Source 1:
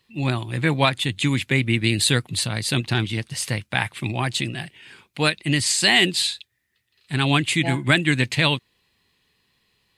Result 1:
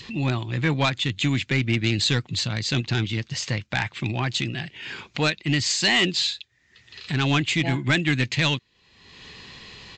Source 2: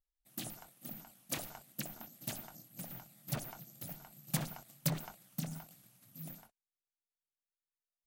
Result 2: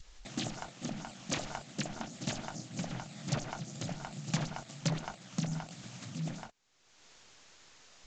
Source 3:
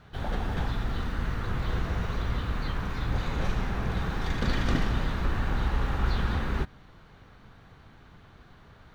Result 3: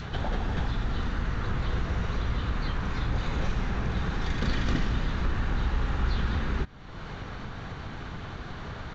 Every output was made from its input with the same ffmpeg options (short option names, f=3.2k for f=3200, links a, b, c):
-af "adynamicequalizer=threshold=0.0112:dfrequency=740:dqfactor=0.94:tfrequency=740:tqfactor=0.94:attack=5:release=100:ratio=0.375:range=2:mode=cutabove:tftype=bell,acompressor=mode=upward:threshold=-23dB:ratio=2.5,aresample=16000,asoftclip=type=tanh:threshold=-12.5dB,aresample=44100"